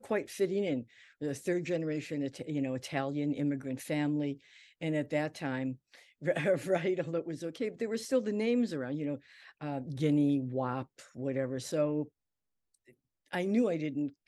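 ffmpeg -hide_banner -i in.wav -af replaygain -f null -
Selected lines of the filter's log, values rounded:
track_gain = +12.7 dB
track_peak = 0.105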